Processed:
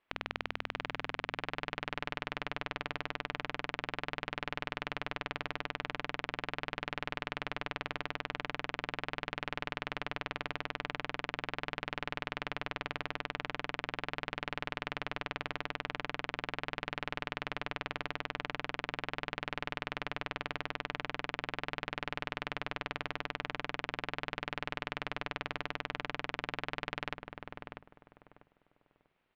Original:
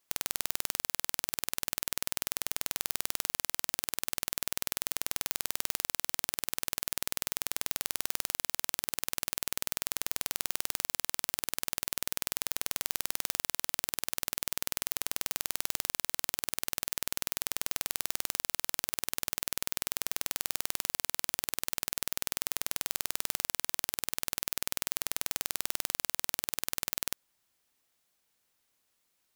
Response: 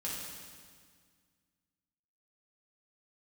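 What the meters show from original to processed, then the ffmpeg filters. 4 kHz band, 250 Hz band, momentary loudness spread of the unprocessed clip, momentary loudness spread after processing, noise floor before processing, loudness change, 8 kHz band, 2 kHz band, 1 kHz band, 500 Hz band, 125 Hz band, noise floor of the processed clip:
−5.5 dB, +4.5 dB, 1 LU, 0 LU, −77 dBFS, −6.5 dB, −30.5 dB, +3.5 dB, +4.5 dB, +4.5 dB, +5.0 dB, −67 dBFS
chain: -filter_complex "[0:a]lowpass=frequency=2800:width=0.5412,lowpass=frequency=2800:width=1.3066,bandreject=frequency=50:width_type=h:width=6,bandreject=frequency=100:width_type=h:width=6,bandreject=frequency=150:width_type=h:width=6,bandreject=frequency=200:width_type=h:width=6,bandreject=frequency=250:width_type=h:width=6,asplit=2[link_01][link_02];[link_02]adelay=644,lowpass=frequency=1100:poles=1,volume=-4dB,asplit=2[link_03][link_04];[link_04]adelay=644,lowpass=frequency=1100:poles=1,volume=0.28,asplit=2[link_05][link_06];[link_06]adelay=644,lowpass=frequency=1100:poles=1,volume=0.28,asplit=2[link_07][link_08];[link_08]adelay=644,lowpass=frequency=1100:poles=1,volume=0.28[link_09];[link_03][link_05][link_07][link_09]amix=inputs=4:normalize=0[link_10];[link_01][link_10]amix=inputs=2:normalize=0,volume=3.5dB"

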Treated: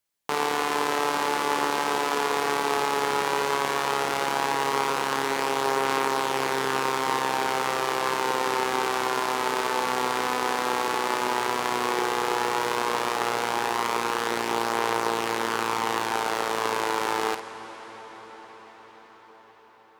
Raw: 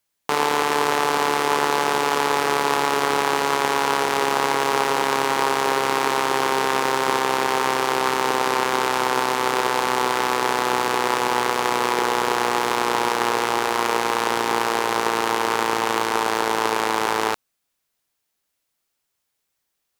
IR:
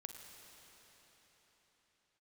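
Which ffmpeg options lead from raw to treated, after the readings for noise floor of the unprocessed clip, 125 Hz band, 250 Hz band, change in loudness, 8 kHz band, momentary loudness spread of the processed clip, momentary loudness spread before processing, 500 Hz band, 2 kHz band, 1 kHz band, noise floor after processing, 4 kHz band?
−77 dBFS, −5.0 dB, −4.5 dB, −5.0 dB, −5.0 dB, 2 LU, 1 LU, −4.5 dB, −4.5 dB, −4.5 dB, −51 dBFS, −5.0 dB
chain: -filter_complex "[0:a]asplit=2[link_01][link_02];[1:a]atrim=start_sample=2205,asetrate=23373,aresample=44100,adelay=52[link_03];[link_02][link_03]afir=irnorm=-1:irlink=0,volume=-7dB[link_04];[link_01][link_04]amix=inputs=2:normalize=0,volume=-5.5dB"

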